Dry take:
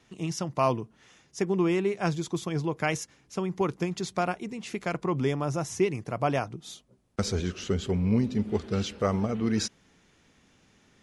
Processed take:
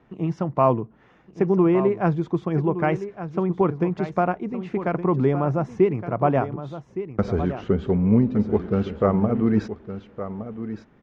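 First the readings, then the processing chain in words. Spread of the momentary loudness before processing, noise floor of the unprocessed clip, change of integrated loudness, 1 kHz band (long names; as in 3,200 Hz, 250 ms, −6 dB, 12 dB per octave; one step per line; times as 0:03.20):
10 LU, −64 dBFS, +6.5 dB, +6.0 dB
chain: low-pass filter 1,300 Hz 12 dB per octave
parametric band 91 Hz −7 dB 0.22 octaves
on a send: single-tap delay 1,165 ms −11.5 dB
on the sum: level +7 dB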